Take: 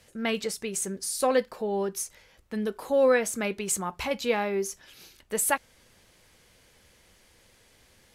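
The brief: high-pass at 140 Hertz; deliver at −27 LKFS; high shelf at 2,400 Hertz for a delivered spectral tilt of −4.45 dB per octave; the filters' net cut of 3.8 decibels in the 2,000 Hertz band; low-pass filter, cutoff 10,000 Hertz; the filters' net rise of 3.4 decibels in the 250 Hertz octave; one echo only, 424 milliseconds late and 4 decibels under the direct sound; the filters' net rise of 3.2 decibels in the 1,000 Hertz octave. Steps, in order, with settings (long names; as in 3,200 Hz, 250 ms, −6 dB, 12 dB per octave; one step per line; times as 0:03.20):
high-pass filter 140 Hz
low-pass filter 10,000 Hz
parametric band 250 Hz +4.5 dB
parametric band 1,000 Hz +5.5 dB
parametric band 2,000 Hz −4 dB
high-shelf EQ 2,400 Hz −5 dB
single-tap delay 424 ms −4 dB
level −0.5 dB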